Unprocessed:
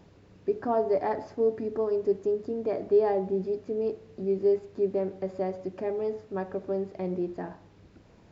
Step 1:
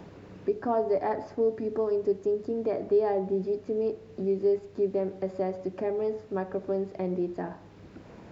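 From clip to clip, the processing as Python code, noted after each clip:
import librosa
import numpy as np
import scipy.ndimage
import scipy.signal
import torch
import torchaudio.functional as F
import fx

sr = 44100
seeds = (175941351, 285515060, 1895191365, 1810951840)

y = fx.band_squash(x, sr, depth_pct=40)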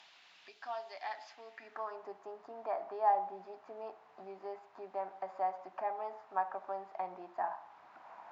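y = fx.low_shelf_res(x, sr, hz=590.0, db=-6.5, q=3.0)
y = fx.filter_sweep_bandpass(y, sr, from_hz=3400.0, to_hz=980.0, start_s=1.27, end_s=2.06, q=1.8)
y = fx.tilt_eq(y, sr, slope=2.0)
y = y * 10.0 ** (3.0 / 20.0)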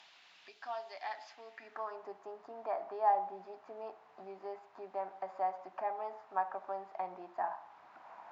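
y = x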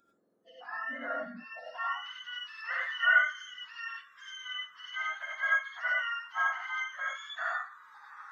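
y = fx.octave_mirror(x, sr, pivot_hz=1100.0)
y = fx.noise_reduce_blind(y, sr, reduce_db=24)
y = fx.rev_gated(y, sr, seeds[0], gate_ms=120, shape='rising', drr_db=-3.5)
y = y * 10.0 ** (3.5 / 20.0)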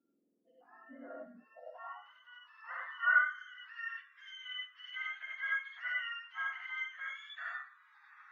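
y = fx.filter_sweep_bandpass(x, sr, from_hz=270.0, to_hz=2400.0, start_s=0.59, end_s=4.36, q=2.6)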